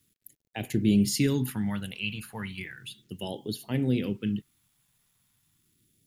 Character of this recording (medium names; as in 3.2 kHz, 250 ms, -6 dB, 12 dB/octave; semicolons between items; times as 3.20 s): a quantiser's noise floor 12-bit, dither none; phasing stages 2, 0.35 Hz, lowest notch 320–1300 Hz